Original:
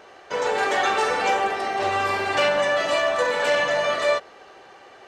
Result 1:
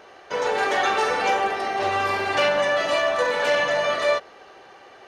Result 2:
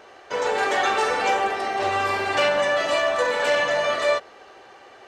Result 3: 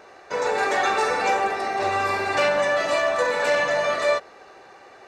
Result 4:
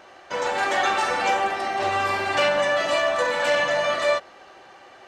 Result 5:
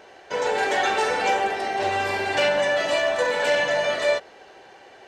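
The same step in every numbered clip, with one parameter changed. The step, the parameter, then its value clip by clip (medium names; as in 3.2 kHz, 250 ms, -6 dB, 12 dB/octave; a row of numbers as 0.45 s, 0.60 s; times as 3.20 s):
band-stop, frequency: 7.7 kHz, 170 Hz, 3.1 kHz, 440 Hz, 1.2 kHz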